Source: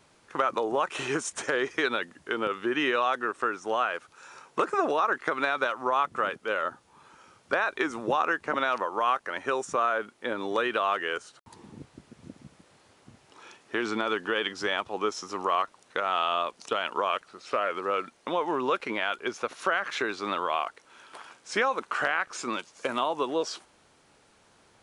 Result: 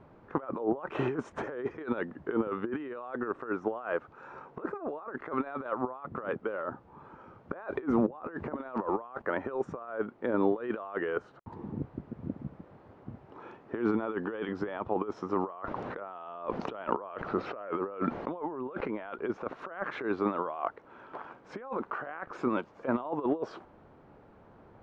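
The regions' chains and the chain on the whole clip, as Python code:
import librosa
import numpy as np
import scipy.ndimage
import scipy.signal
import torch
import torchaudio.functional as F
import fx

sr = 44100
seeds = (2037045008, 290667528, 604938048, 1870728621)

y = fx.chain(x, sr, fx.law_mismatch(coded='mu'),
    fx.highpass(hz=40.0, slope=12),
    fx.low_shelf(hz=430.0, db=4.0), at=(7.54, 9.22))
y = fx.chain(y, sr, fx.lowpass(hz=5500.0, slope=12),
    fx.env_flatten(amount_pct=50), at=(15.53, 19.14))
y = fx.over_compress(y, sr, threshold_db=-32.0, ratio=-0.5)
y = scipy.signal.sosfilt(scipy.signal.butter(2, 1100.0, 'lowpass', fs=sr, output='sos'), y)
y = fx.low_shelf(y, sr, hz=430.0, db=5.0)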